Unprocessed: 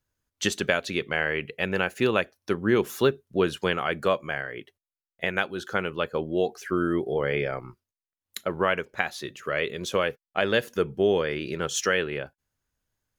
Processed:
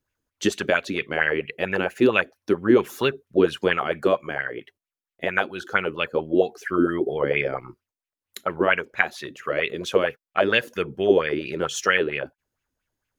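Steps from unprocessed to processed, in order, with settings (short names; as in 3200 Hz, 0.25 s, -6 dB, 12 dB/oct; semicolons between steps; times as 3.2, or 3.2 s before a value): LFO bell 4.4 Hz 260–2700 Hz +14 dB; gain -2 dB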